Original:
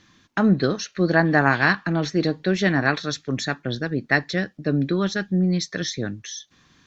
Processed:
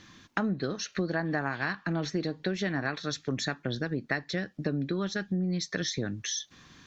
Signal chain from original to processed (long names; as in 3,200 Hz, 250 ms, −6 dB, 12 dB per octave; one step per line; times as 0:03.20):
downward compressor 6 to 1, threshold −31 dBFS, peak gain reduction 18 dB
level +3 dB